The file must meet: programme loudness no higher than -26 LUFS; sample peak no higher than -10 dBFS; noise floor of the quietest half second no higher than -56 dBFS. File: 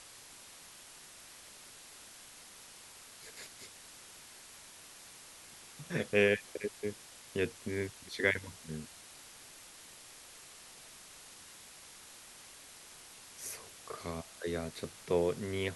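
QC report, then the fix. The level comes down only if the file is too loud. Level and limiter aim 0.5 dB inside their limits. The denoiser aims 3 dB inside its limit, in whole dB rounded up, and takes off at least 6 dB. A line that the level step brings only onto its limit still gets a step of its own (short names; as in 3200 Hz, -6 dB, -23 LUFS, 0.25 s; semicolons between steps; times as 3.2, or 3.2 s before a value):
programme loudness -36.5 LUFS: OK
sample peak -14.0 dBFS: OK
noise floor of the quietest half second -54 dBFS: fail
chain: denoiser 6 dB, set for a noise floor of -54 dBFS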